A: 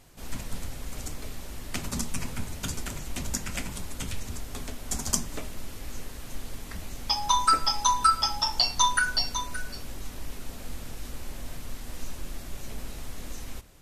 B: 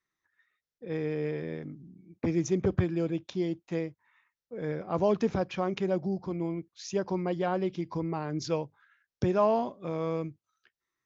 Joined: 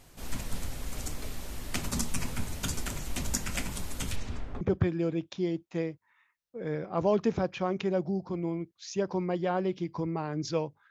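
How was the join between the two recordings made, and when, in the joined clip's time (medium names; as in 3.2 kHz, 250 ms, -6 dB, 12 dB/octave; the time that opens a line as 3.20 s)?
A
4.15–4.61 s: low-pass 6.7 kHz -> 1.1 kHz
4.61 s: go over to B from 2.58 s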